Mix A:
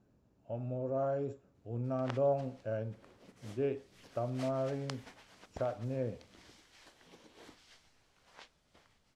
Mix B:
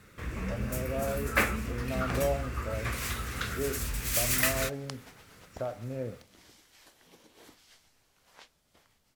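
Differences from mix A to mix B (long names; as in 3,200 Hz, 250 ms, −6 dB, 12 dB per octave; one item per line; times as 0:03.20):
first sound: unmuted
master: remove high-frequency loss of the air 58 metres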